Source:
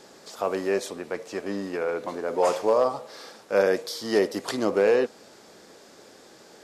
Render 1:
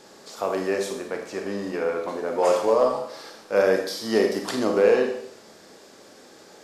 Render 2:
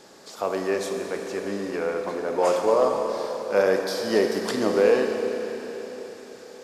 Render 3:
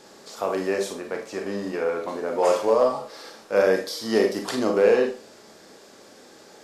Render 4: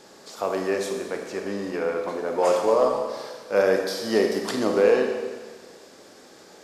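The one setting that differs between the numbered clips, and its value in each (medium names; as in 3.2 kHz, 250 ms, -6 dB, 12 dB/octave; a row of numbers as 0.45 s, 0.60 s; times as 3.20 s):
Schroeder reverb, RT60: 0.68 s, 4.3 s, 0.31 s, 1.5 s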